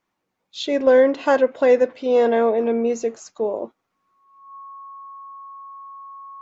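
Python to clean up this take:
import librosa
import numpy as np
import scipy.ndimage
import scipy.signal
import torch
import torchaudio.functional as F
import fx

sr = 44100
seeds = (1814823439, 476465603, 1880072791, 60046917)

y = fx.notch(x, sr, hz=1100.0, q=30.0)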